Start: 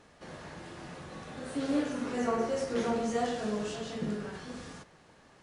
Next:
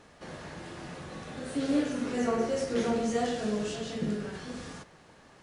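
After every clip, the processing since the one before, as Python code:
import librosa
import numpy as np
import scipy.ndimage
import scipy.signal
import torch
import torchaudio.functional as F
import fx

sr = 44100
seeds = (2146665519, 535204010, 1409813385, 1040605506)

y = fx.dynamic_eq(x, sr, hz=1000.0, q=1.2, threshold_db=-49.0, ratio=4.0, max_db=-5)
y = F.gain(torch.from_numpy(y), 3.0).numpy()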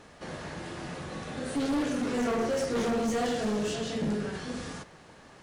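y = np.clip(x, -10.0 ** (-29.0 / 20.0), 10.0 ** (-29.0 / 20.0))
y = F.gain(torch.from_numpy(y), 3.5).numpy()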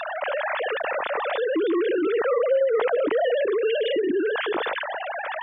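y = fx.sine_speech(x, sr)
y = fx.env_flatten(y, sr, amount_pct=70)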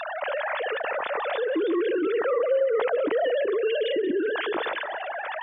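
y = fx.echo_feedback(x, sr, ms=185, feedback_pct=42, wet_db=-17.0)
y = F.gain(torch.from_numpy(y), -2.0).numpy()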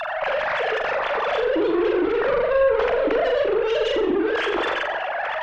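y = fx.cheby_harmonics(x, sr, harmonics=(2, 5, 7), levels_db=(-10, -14, -36), full_scale_db=-15.0)
y = fx.room_flutter(y, sr, wall_m=7.3, rt60_s=0.44)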